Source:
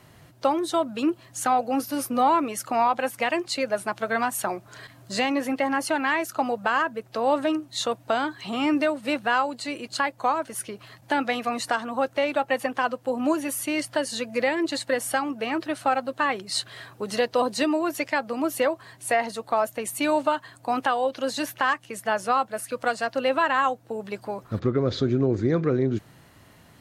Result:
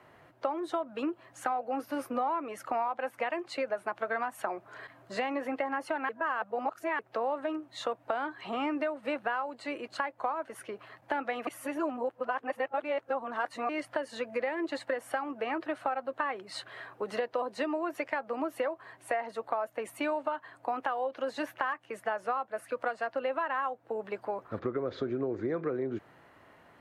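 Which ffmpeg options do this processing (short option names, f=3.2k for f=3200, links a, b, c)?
-filter_complex "[0:a]asplit=5[a][b][c][d][e];[a]atrim=end=6.092[f];[b]atrim=start=6.088:end=6.992,asetpts=PTS-STARTPTS,areverse[g];[c]atrim=start=6.988:end=11.472[h];[d]atrim=start=11.468:end=13.692,asetpts=PTS-STARTPTS,areverse[i];[e]atrim=start=13.688[j];[f][g]acrossfade=d=0.004:c1=hsin:c2=hsin[k];[k][h]acrossfade=d=0.004:c1=hsin:c2=hsin[l];[l][i]acrossfade=d=0.004:c1=hsin:c2=hsin[m];[m][j]acrossfade=d=0.004:c1=hsin:c2=hsin,acrossover=split=320 2400:gain=0.2 1 0.126[n][o][p];[n][o][p]amix=inputs=3:normalize=0,acompressor=threshold=-29dB:ratio=5"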